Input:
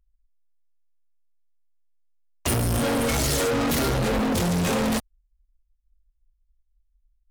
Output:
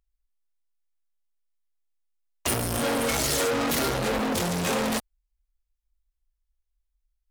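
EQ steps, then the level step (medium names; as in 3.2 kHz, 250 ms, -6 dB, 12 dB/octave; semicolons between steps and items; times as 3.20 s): bass shelf 210 Hz -10 dB; 0.0 dB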